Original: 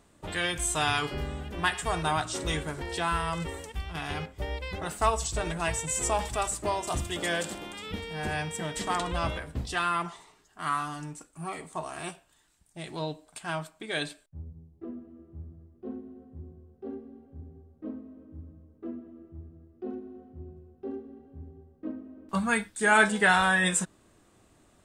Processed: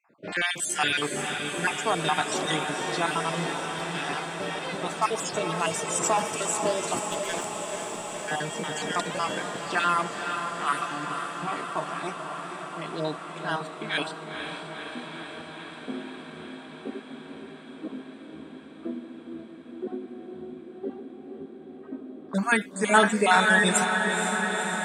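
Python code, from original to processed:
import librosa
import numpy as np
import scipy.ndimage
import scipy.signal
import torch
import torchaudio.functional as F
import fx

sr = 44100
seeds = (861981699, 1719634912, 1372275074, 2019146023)

p1 = fx.spec_dropout(x, sr, seeds[0], share_pct=37)
p2 = fx.env_lowpass(p1, sr, base_hz=1800.0, full_db=-28.5)
p3 = scipy.signal.sosfilt(scipy.signal.butter(4, 170.0, 'highpass', fs=sr, output='sos'), p2)
p4 = fx.power_curve(p3, sr, exponent=2.0, at=(6.99, 8.28))
p5 = p4 + fx.echo_diffused(p4, sr, ms=492, feedback_pct=78, wet_db=-6.5, dry=0)
y = p5 * 10.0 ** (4.5 / 20.0)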